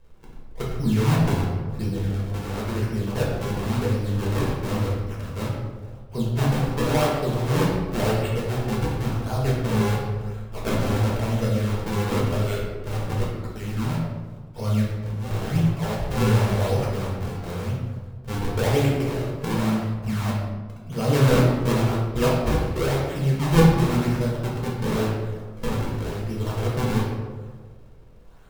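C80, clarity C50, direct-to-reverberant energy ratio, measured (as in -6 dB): 3.5 dB, 1.0 dB, -5.0 dB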